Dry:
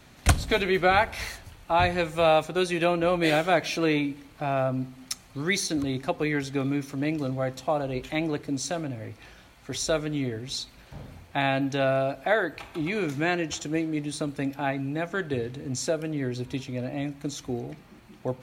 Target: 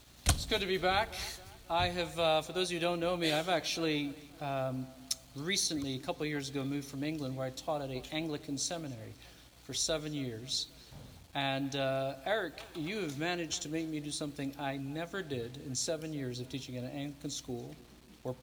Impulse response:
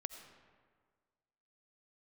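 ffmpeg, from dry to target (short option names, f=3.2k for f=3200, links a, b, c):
-filter_complex "[0:a]highshelf=f=2.8k:t=q:w=1.5:g=6,aeval=exprs='val(0)+0.00224*(sin(2*PI*60*n/s)+sin(2*PI*2*60*n/s)/2+sin(2*PI*3*60*n/s)/3+sin(2*PI*4*60*n/s)/4+sin(2*PI*5*60*n/s)/5)':c=same,acrusher=bits=7:mix=0:aa=0.5,asplit=2[a][b];[b]adelay=270,lowpass=f=3.5k:p=1,volume=-21dB,asplit=2[c][d];[d]adelay=270,lowpass=f=3.5k:p=1,volume=0.51,asplit=2[e][f];[f]adelay=270,lowpass=f=3.5k:p=1,volume=0.51,asplit=2[g][h];[h]adelay=270,lowpass=f=3.5k:p=1,volume=0.51[i];[a][c][e][g][i]amix=inputs=5:normalize=0,volume=-9dB"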